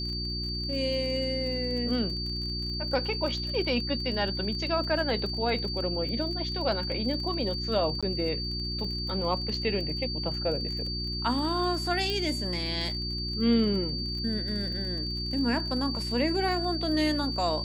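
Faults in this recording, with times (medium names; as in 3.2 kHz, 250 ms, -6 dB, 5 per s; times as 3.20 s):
crackle 33 per s -36 dBFS
hum 60 Hz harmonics 6 -35 dBFS
whine 4.6 kHz -33 dBFS
8.01–8.03 s: dropout 16 ms
12.10 s: pop -19 dBFS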